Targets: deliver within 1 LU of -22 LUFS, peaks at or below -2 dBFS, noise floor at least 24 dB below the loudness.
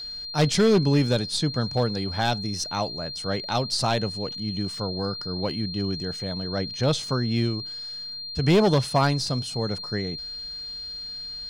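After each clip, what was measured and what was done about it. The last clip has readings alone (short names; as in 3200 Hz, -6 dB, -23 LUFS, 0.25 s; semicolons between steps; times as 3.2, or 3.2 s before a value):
clipped 0.5%; flat tops at -13.5 dBFS; steady tone 4200 Hz; tone level -33 dBFS; loudness -25.5 LUFS; peak -13.5 dBFS; loudness target -22.0 LUFS
-> clip repair -13.5 dBFS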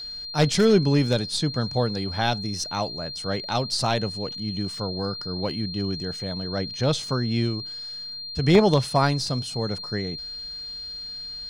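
clipped 0.0%; steady tone 4200 Hz; tone level -33 dBFS
-> notch 4200 Hz, Q 30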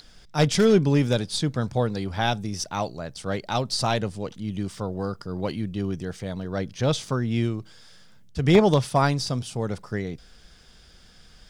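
steady tone none; loudness -25.5 LUFS; peak -4.5 dBFS; loudness target -22.0 LUFS
-> gain +3.5 dB; limiter -2 dBFS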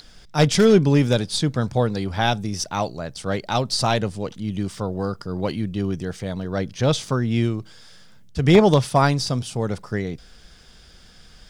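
loudness -22.0 LUFS; peak -2.0 dBFS; noise floor -48 dBFS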